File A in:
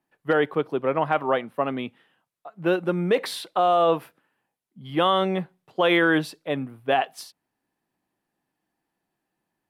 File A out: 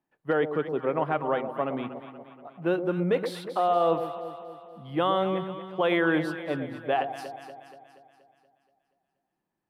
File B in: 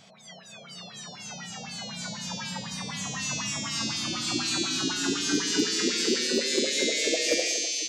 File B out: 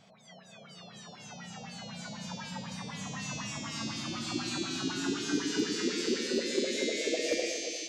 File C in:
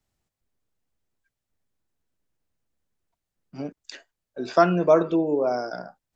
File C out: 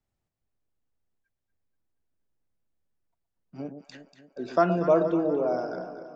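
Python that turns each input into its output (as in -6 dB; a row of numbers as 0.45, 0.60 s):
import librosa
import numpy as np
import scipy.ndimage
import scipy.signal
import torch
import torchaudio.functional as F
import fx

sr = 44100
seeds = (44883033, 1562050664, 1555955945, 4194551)

y = fx.high_shelf(x, sr, hz=2400.0, db=-8.0)
y = fx.echo_alternate(y, sr, ms=119, hz=830.0, feedback_pct=73, wet_db=-8)
y = y * librosa.db_to_amplitude(-3.5)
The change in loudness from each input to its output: -4.0, -6.5, -3.5 LU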